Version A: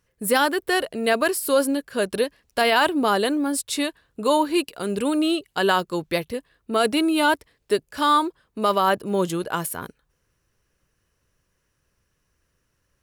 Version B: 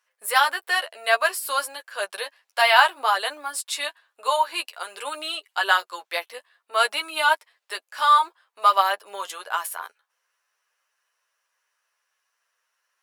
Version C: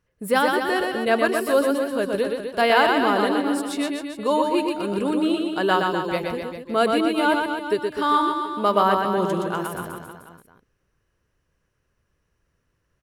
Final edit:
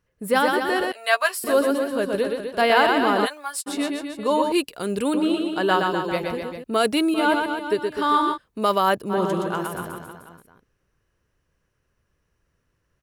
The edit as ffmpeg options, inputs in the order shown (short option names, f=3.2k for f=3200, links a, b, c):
-filter_complex "[1:a]asplit=2[a][b];[0:a]asplit=3[c][d][e];[2:a]asplit=6[f][g][h][i][j][k];[f]atrim=end=0.922[l];[a]atrim=start=0.918:end=1.442[m];[g]atrim=start=1.438:end=3.27[n];[b]atrim=start=3.25:end=3.68[o];[h]atrim=start=3.66:end=4.522[p];[c]atrim=start=4.518:end=5.142[q];[i]atrim=start=5.138:end=6.642[r];[d]atrim=start=6.638:end=7.142[s];[j]atrim=start=7.138:end=8.38[t];[e]atrim=start=8.34:end=9.13[u];[k]atrim=start=9.09[v];[l][m]acrossfade=d=0.004:c1=hsin:c2=hsin[w];[w][n]acrossfade=d=0.004:c1=hsin:c2=hsin[x];[x][o]acrossfade=d=0.02:c1=tri:c2=tri[y];[y][p]acrossfade=d=0.02:c1=tri:c2=tri[z];[z][q]acrossfade=d=0.004:c1=hsin:c2=hsin[aa];[aa][r]acrossfade=d=0.004:c1=hsin:c2=hsin[ab];[ab][s]acrossfade=d=0.004:c1=hsin:c2=hsin[ac];[ac][t]acrossfade=d=0.004:c1=hsin:c2=hsin[ad];[ad][u]acrossfade=d=0.04:c1=tri:c2=tri[ae];[ae][v]acrossfade=d=0.04:c1=tri:c2=tri"